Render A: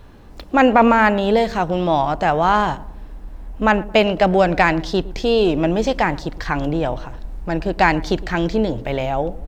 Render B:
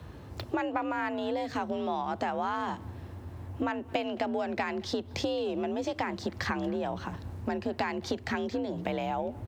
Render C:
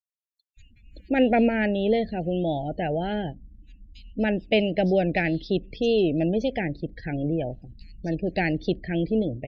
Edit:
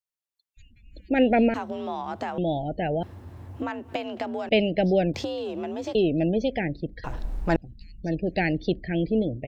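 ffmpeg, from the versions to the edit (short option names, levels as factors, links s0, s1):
-filter_complex "[1:a]asplit=3[s0][s1][s2];[2:a]asplit=5[s3][s4][s5][s6][s7];[s3]atrim=end=1.542[s8];[s0]atrim=start=1.538:end=2.382[s9];[s4]atrim=start=2.378:end=3.032[s10];[s1]atrim=start=3.028:end=4.492[s11];[s5]atrim=start=4.488:end=5.142[s12];[s2]atrim=start=5.138:end=5.952[s13];[s6]atrim=start=5.948:end=7.042[s14];[0:a]atrim=start=7.038:end=7.562[s15];[s7]atrim=start=7.558[s16];[s8][s9]acrossfade=d=0.004:c1=hsin:c2=hsin[s17];[s17][s10]acrossfade=d=0.004:c1=hsin:c2=hsin[s18];[s18][s11]acrossfade=d=0.004:c1=hsin:c2=hsin[s19];[s19][s12]acrossfade=d=0.004:c1=hsin:c2=hsin[s20];[s20][s13]acrossfade=d=0.004:c1=hsin:c2=hsin[s21];[s21][s14]acrossfade=d=0.004:c1=hsin:c2=hsin[s22];[s22][s15]acrossfade=d=0.004:c1=hsin:c2=hsin[s23];[s23][s16]acrossfade=d=0.004:c1=hsin:c2=hsin"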